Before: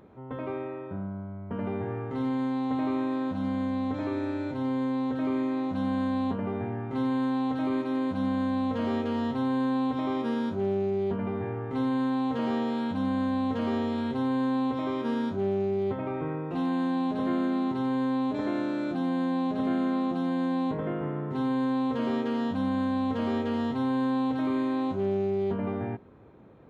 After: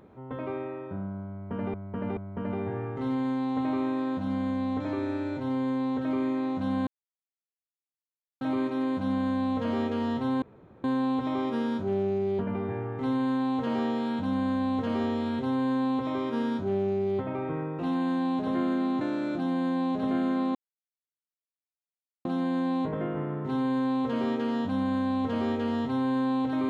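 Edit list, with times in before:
1.31–1.74 loop, 3 plays
6.01–7.55 mute
9.56 insert room tone 0.42 s
17.73–18.57 cut
20.11 insert silence 1.70 s

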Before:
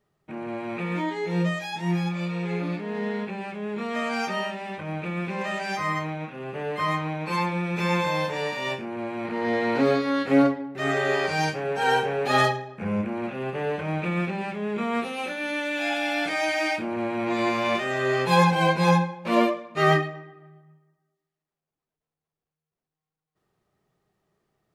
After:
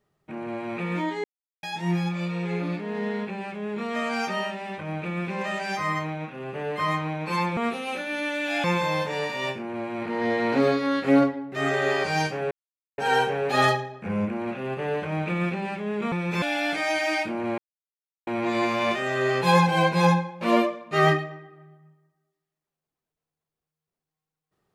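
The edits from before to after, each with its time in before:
1.24–1.63 mute
7.57–7.87 swap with 14.88–15.95
11.74 insert silence 0.47 s
17.11 insert silence 0.69 s

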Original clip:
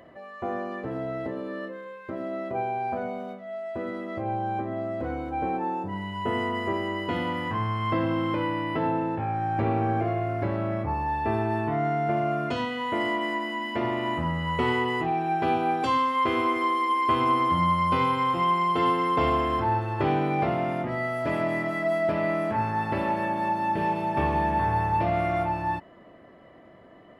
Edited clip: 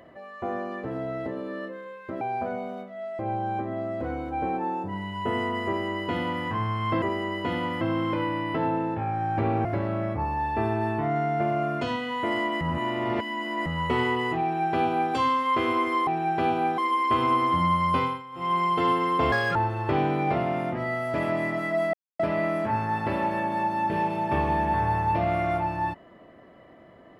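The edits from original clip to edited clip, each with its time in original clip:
2.21–2.72 cut
3.7–4.19 cut
6.66–7.45 copy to 8.02
9.86–10.34 cut
13.3–14.35 reverse
15.11–15.82 copy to 16.76
17.95–18.56 dip -18 dB, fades 0.26 s
19.3–19.67 speed 158%
22.05 insert silence 0.26 s

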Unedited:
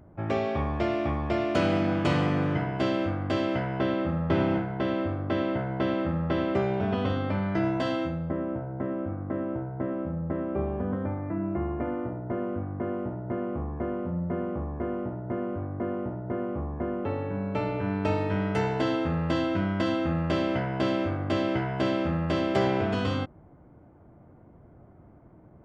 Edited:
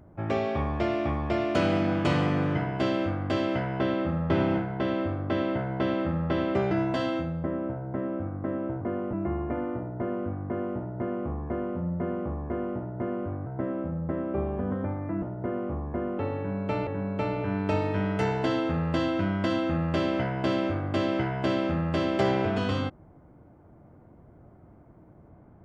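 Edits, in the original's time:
6.71–7.57 cut
9.67–11.43 swap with 15.76–16.08
17.23–17.73 loop, 2 plays

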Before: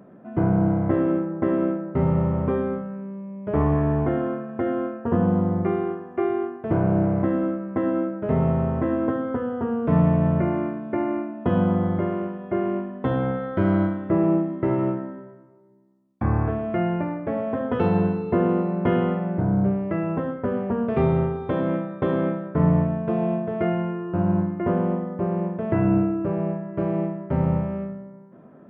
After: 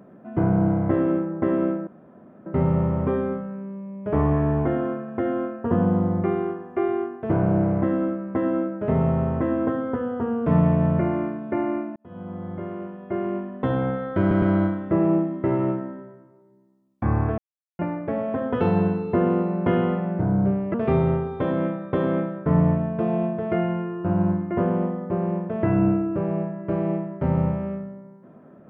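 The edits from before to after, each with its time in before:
1.87 insert room tone 0.59 s
11.37–13.01 fade in
13.61 stutter 0.11 s, 3 plays
16.57–16.98 mute
19.93–20.83 cut

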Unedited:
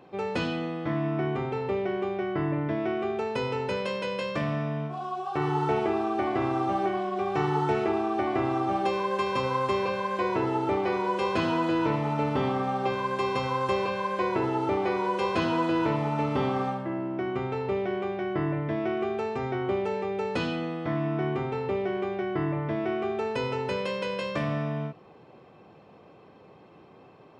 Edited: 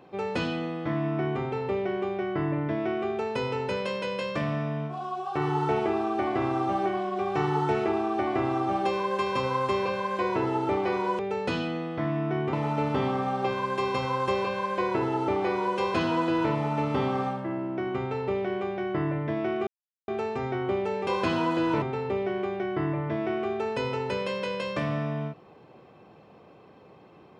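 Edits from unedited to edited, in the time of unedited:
11.19–11.94 swap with 20.07–21.41
19.08 insert silence 0.41 s

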